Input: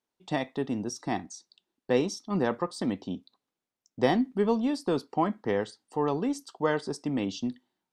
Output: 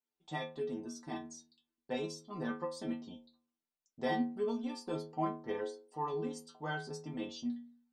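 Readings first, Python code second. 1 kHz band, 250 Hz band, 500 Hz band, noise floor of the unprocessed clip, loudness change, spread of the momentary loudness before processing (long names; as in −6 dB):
−8.0 dB, −10.0 dB, −10.0 dB, below −85 dBFS, −9.5 dB, 9 LU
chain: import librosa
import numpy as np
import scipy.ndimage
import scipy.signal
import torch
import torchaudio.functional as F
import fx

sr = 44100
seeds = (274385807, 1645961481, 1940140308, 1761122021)

y = fx.stiff_resonator(x, sr, f0_hz=77.0, decay_s=0.61, stiffness=0.008)
y = y * librosa.db_to_amplitude(2.0)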